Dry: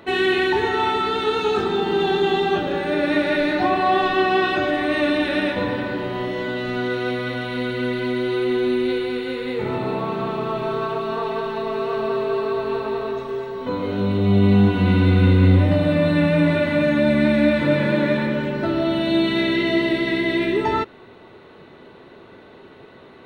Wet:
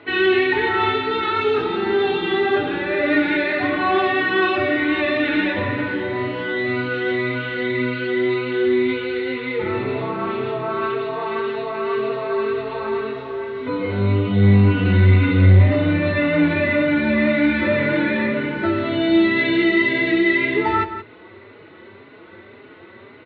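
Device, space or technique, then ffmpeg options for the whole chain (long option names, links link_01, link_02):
barber-pole flanger into a guitar amplifier: -filter_complex "[0:a]asplit=2[link_01][link_02];[link_02]adelay=4.4,afreqshift=1.9[link_03];[link_01][link_03]amix=inputs=2:normalize=1,asoftclip=type=tanh:threshold=-11dB,highpass=75,equalizer=frequency=100:width_type=q:width=4:gain=9,equalizer=frequency=160:width_type=q:width=4:gain=-9,equalizer=frequency=340:width_type=q:width=4:gain=3,equalizer=frequency=740:width_type=q:width=4:gain=-4,equalizer=frequency=1400:width_type=q:width=4:gain=3,equalizer=frequency=2100:width_type=q:width=4:gain=8,lowpass=frequency=4100:width=0.5412,lowpass=frequency=4100:width=1.3066,asplit=2[link_04][link_05];[link_05]adelay=174.9,volume=-11dB,highshelf=frequency=4000:gain=-3.94[link_06];[link_04][link_06]amix=inputs=2:normalize=0,volume=3dB"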